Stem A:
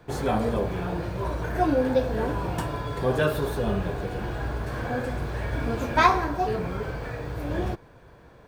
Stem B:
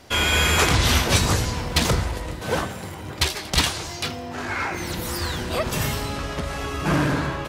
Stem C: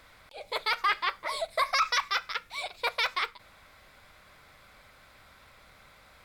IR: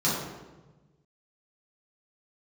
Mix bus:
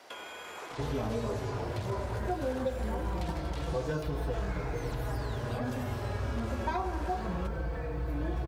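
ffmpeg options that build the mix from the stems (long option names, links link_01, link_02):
-filter_complex "[0:a]asplit=2[link_01][link_02];[link_02]adelay=4.2,afreqshift=-0.25[link_03];[link_01][link_03]amix=inputs=2:normalize=1,adelay=700,volume=0.5dB[link_04];[1:a]highpass=560,alimiter=limit=-18dB:level=0:latency=1:release=31,acompressor=threshold=-37dB:ratio=2.5,volume=-0.5dB[link_05];[link_04][link_05]amix=inputs=2:normalize=0,equalizer=frequency=65:width=2:gain=5.5,acrossover=split=1100|3800[link_06][link_07][link_08];[link_06]acompressor=threshold=-30dB:ratio=4[link_09];[link_07]acompressor=threshold=-46dB:ratio=4[link_10];[link_08]acompressor=threshold=-48dB:ratio=4[link_11];[link_09][link_10][link_11]amix=inputs=3:normalize=0,highshelf=frequency=2500:gain=-8"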